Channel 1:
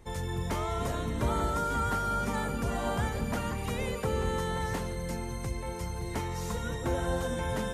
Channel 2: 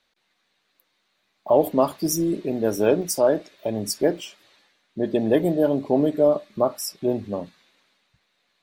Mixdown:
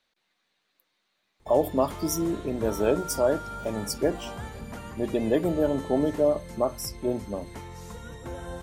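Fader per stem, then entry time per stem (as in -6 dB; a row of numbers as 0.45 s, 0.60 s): -7.0 dB, -4.5 dB; 1.40 s, 0.00 s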